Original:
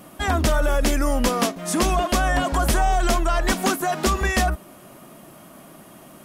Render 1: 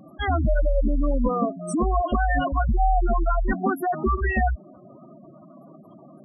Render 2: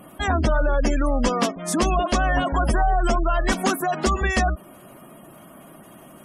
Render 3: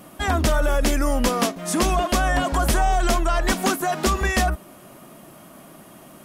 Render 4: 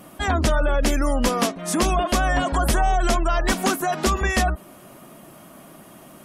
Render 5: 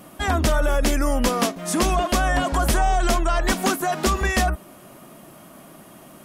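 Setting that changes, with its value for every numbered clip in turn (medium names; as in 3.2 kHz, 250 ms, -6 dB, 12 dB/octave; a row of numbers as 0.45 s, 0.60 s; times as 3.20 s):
spectral gate, under each frame's peak: -10 dB, -25 dB, -60 dB, -35 dB, -50 dB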